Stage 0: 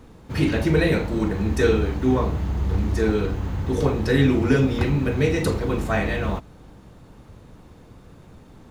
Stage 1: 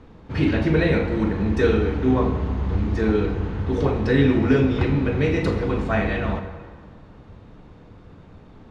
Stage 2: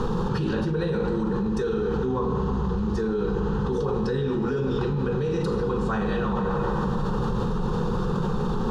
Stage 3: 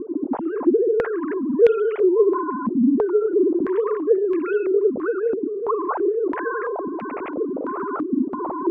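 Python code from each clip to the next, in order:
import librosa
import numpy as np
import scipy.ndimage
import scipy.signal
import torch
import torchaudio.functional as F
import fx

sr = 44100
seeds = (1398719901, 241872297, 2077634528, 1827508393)

y1 = scipy.signal.sosfilt(scipy.signal.butter(2, 3800.0, 'lowpass', fs=sr, output='sos'), x)
y1 = fx.rev_plate(y1, sr, seeds[0], rt60_s=1.8, hf_ratio=0.7, predelay_ms=0, drr_db=7.0)
y2 = fx.fixed_phaser(y1, sr, hz=430.0, stages=8)
y2 = fx.env_flatten(y2, sr, amount_pct=100)
y2 = y2 * librosa.db_to_amplitude(-9.0)
y3 = fx.sine_speech(y2, sr)
y3 = fx.filter_held_lowpass(y3, sr, hz=3.0, low_hz=270.0, high_hz=2400.0)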